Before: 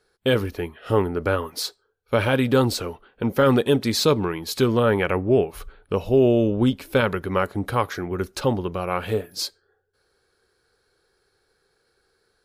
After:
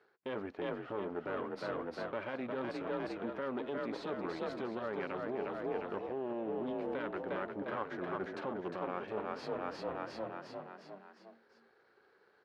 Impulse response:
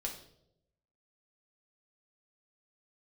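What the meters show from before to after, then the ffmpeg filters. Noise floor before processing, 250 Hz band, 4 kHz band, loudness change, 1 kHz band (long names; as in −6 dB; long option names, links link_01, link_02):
−69 dBFS, −17.0 dB, −23.5 dB, −17.0 dB, −13.0 dB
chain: -filter_complex "[0:a]aeval=exprs='if(lt(val(0),0),0.251*val(0),val(0))':channel_layout=same,bandreject=frequency=480:width=12,asplit=7[link_01][link_02][link_03][link_04][link_05][link_06][link_07];[link_02]adelay=355,afreqshift=38,volume=-6dB[link_08];[link_03]adelay=710,afreqshift=76,volume=-11.7dB[link_09];[link_04]adelay=1065,afreqshift=114,volume=-17.4dB[link_10];[link_05]adelay=1420,afreqshift=152,volume=-23dB[link_11];[link_06]adelay=1775,afreqshift=190,volume=-28.7dB[link_12];[link_07]adelay=2130,afreqshift=228,volume=-34.4dB[link_13];[link_01][link_08][link_09][link_10][link_11][link_12][link_13]amix=inputs=7:normalize=0,alimiter=limit=-18dB:level=0:latency=1:release=256,areverse,acompressor=threshold=-38dB:ratio=6,areverse,highpass=250,lowpass=2000,volume=5dB"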